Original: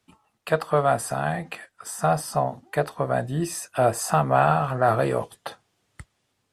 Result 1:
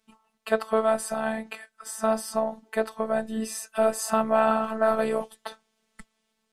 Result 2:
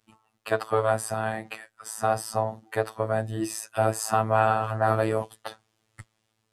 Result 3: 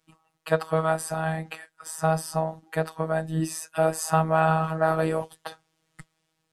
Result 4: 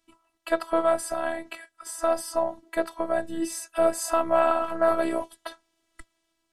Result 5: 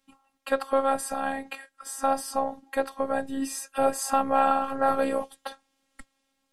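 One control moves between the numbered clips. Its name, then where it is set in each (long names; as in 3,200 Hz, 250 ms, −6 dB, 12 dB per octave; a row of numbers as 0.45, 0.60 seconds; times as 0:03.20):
phases set to zero, frequency: 220, 110, 160, 330, 270 Hertz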